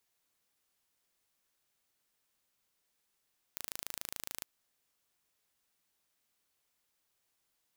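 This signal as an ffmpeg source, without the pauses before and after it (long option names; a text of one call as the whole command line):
ffmpeg -f lavfi -i "aevalsrc='0.251*eq(mod(n,1633),0)':duration=0.87:sample_rate=44100" out.wav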